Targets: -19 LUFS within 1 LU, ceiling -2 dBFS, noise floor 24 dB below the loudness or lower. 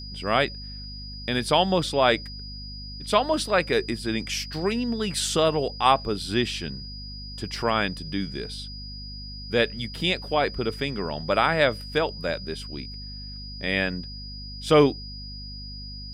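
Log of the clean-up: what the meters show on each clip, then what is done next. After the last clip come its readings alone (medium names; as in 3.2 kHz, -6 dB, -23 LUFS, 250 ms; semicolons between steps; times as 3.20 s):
hum 50 Hz; highest harmonic 250 Hz; hum level -37 dBFS; steady tone 4.9 kHz; tone level -39 dBFS; loudness -25.0 LUFS; peak level -5.0 dBFS; loudness target -19.0 LUFS
-> hum notches 50/100/150/200/250 Hz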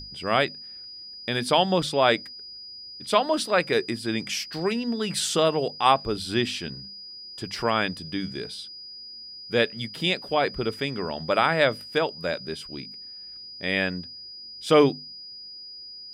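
hum not found; steady tone 4.9 kHz; tone level -39 dBFS
-> band-stop 4.9 kHz, Q 30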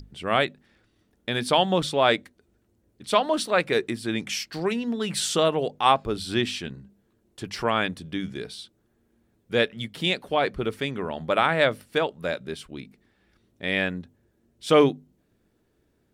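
steady tone not found; loudness -25.0 LUFS; peak level -5.0 dBFS; loudness target -19.0 LUFS
-> trim +6 dB; peak limiter -2 dBFS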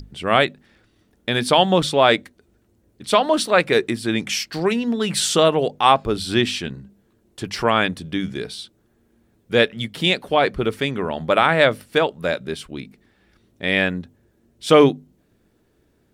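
loudness -19.5 LUFS; peak level -2.0 dBFS; noise floor -63 dBFS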